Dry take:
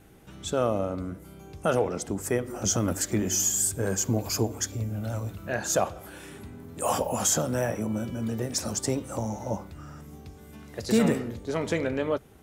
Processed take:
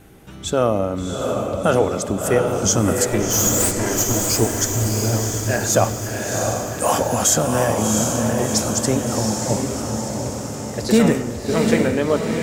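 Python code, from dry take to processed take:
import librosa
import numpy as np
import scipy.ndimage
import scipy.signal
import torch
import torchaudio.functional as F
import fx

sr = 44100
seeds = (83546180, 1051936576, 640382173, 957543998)

y = fx.lower_of_two(x, sr, delay_ms=3.0, at=(3.08, 4.28))
y = fx.echo_diffused(y, sr, ms=705, feedback_pct=57, wet_db=-3.5)
y = F.gain(torch.from_numpy(y), 7.5).numpy()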